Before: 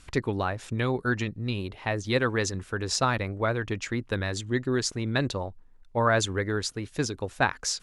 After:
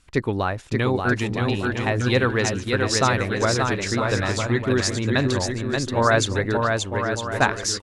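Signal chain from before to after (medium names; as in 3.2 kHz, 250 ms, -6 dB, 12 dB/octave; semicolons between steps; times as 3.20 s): 6.57–7.32 s: two resonant band-passes 1.8 kHz, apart 1.3 oct; bouncing-ball echo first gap 580 ms, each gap 0.65×, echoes 5; gate -35 dBFS, range -11 dB; trim +4.5 dB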